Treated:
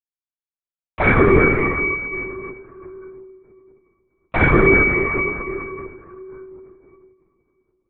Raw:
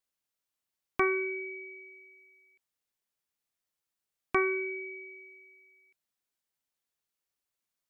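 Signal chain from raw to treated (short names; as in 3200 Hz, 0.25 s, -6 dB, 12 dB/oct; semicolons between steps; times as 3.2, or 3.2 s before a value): expander -51 dBFS; reverb RT60 3.1 s, pre-delay 4 ms, DRR -18.5 dB; LPC vocoder at 8 kHz whisper; gain -4.5 dB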